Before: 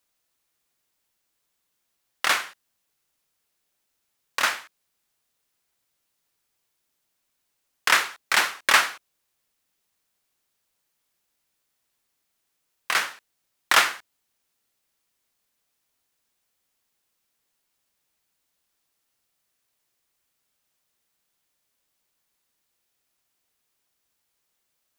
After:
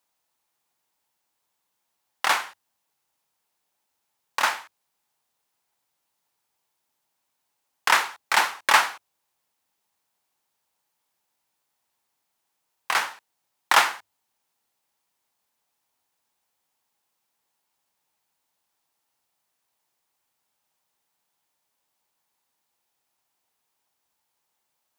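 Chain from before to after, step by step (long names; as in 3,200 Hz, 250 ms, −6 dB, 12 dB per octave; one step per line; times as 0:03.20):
high-pass filter 65 Hz
parametric band 870 Hz +10 dB 0.61 octaves
mains-hum notches 50/100 Hz
level −2 dB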